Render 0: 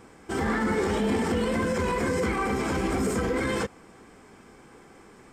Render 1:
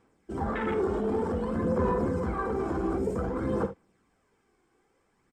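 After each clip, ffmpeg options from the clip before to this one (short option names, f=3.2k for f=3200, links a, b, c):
-af "afwtdn=0.0398,aphaser=in_gain=1:out_gain=1:delay=2.8:decay=0.41:speed=0.54:type=sinusoidal,aecho=1:1:52|73:0.251|0.178,volume=-3.5dB"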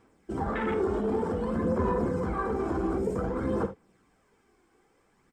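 -filter_complex "[0:a]asplit=2[a][b];[b]acompressor=threshold=-37dB:ratio=6,volume=-1dB[c];[a][c]amix=inputs=2:normalize=0,flanger=delay=2.9:depth=3.8:regen=-74:speed=1.1:shape=sinusoidal,volume=2.5dB"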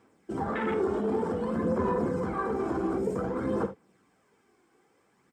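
-af "highpass=110"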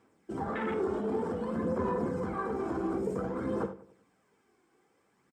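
-filter_complex "[0:a]asplit=2[a][b];[b]adelay=94,lowpass=f=1.7k:p=1,volume=-15dB,asplit=2[c][d];[d]adelay=94,lowpass=f=1.7k:p=1,volume=0.43,asplit=2[e][f];[f]adelay=94,lowpass=f=1.7k:p=1,volume=0.43,asplit=2[g][h];[h]adelay=94,lowpass=f=1.7k:p=1,volume=0.43[i];[a][c][e][g][i]amix=inputs=5:normalize=0,volume=-3.5dB"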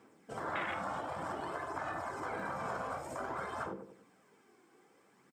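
-af "afftfilt=real='re*lt(hypot(re,im),0.0562)':imag='im*lt(hypot(re,im),0.0562)':win_size=1024:overlap=0.75,highpass=130,volume=4.5dB"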